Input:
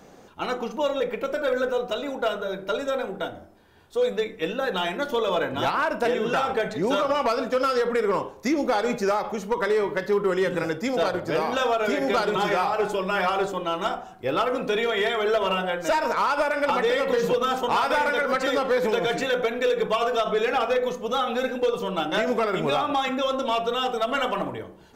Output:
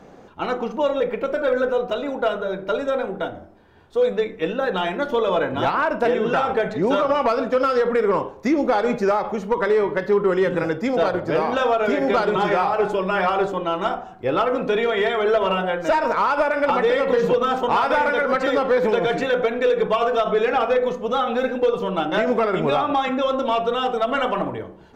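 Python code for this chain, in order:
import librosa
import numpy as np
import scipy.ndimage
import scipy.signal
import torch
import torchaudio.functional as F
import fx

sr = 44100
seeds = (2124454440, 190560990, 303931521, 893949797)

y = fx.lowpass(x, sr, hz=2000.0, slope=6)
y = y * librosa.db_to_amplitude(4.5)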